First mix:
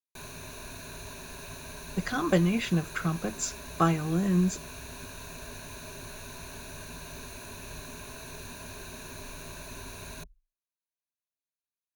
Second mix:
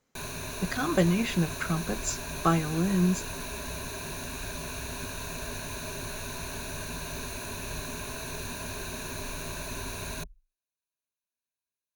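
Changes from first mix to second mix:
speech: entry −1.35 s
background +6.0 dB

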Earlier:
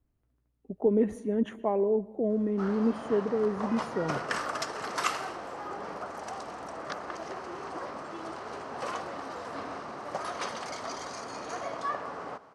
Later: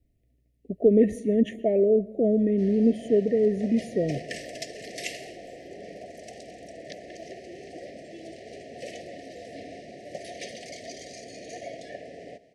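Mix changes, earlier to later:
speech +6.5 dB
master: add Chebyshev band-stop filter 710–1,800 Hz, order 5

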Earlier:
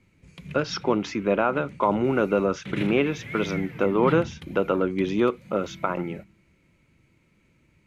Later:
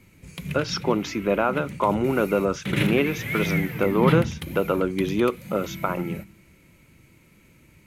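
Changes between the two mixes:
background +7.5 dB
master: remove high-frequency loss of the air 63 metres

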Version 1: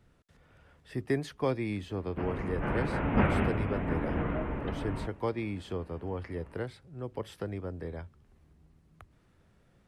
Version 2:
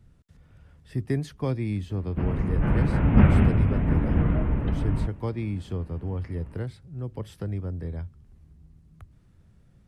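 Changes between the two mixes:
speech −3.0 dB
master: add bass and treble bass +13 dB, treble +5 dB

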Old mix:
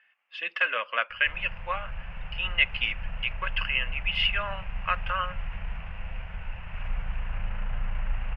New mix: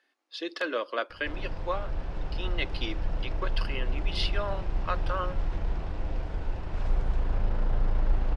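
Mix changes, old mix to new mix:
background +4.5 dB
master: remove drawn EQ curve 200 Hz 0 dB, 310 Hz −24 dB, 510 Hz −6 dB, 2,800 Hz +14 dB, 3,900 Hz −14 dB

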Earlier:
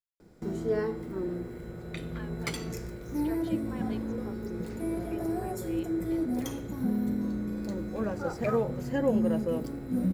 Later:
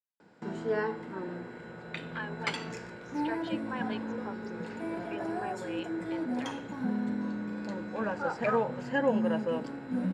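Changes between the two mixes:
speech +3.5 dB
master: add loudspeaker in its box 200–7,300 Hz, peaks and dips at 360 Hz −7 dB, 920 Hz +9 dB, 1,600 Hz +9 dB, 2,800 Hz +7 dB, 6,100 Hz −7 dB

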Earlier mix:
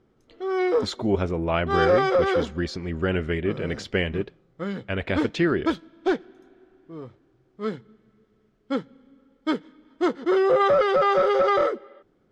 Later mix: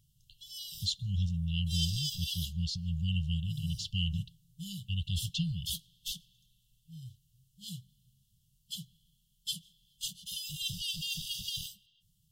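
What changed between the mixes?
background: remove high-frequency loss of the air 160 metres
master: add linear-phase brick-wall band-stop 180–2,700 Hz

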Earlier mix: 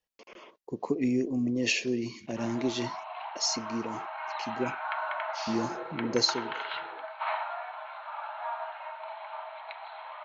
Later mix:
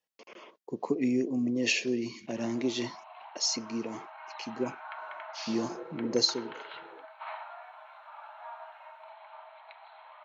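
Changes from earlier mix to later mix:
background −9.0 dB
master: add high-pass filter 140 Hz 12 dB per octave

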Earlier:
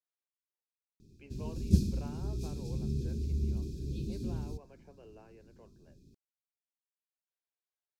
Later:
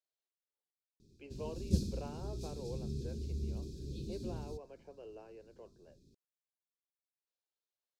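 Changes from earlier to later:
background −6.5 dB
master: add octave-band graphic EQ 500/2,000/4,000/8,000 Hz +6/−4/+7/+4 dB

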